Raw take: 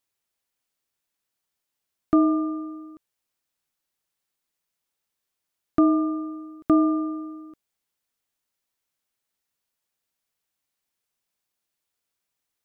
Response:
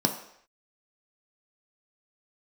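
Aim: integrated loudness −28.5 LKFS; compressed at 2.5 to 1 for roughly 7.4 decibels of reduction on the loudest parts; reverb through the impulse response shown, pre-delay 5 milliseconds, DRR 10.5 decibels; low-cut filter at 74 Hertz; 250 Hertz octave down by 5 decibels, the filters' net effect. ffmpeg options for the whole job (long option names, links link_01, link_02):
-filter_complex "[0:a]highpass=74,equalizer=frequency=250:width_type=o:gain=-7,acompressor=threshold=-29dB:ratio=2.5,asplit=2[link_01][link_02];[1:a]atrim=start_sample=2205,adelay=5[link_03];[link_02][link_03]afir=irnorm=-1:irlink=0,volume=-20.5dB[link_04];[link_01][link_04]amix=inputs=2:normalize=0,volume=11dB"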